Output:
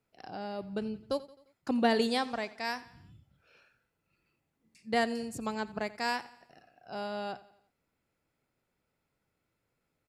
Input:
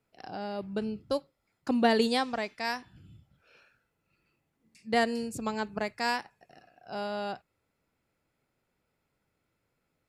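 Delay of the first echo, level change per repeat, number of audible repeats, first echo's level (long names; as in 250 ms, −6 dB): 87 ms, −6.0 dB, 3, −19.0 dB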